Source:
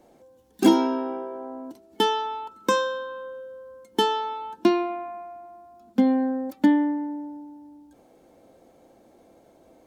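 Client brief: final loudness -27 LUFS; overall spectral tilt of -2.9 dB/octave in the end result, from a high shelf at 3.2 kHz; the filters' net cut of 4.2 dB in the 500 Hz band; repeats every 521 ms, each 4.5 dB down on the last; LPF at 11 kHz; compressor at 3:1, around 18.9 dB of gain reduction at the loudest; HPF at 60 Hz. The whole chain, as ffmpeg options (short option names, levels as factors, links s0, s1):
-af "highpass=60,lowpass=11000,equalizer=f=500:t=o:g=-6,highshelf=f=3200:g=9,acompressor=threshold=0.00794:ratio=3,aecho=1:1:521|1042|1563|2084|2605|3126|3647|4168|4689:0.596|0.357|0.214|0.129|0.0772|0.0463|0.0278|0.0167|0.01,volume=4.73"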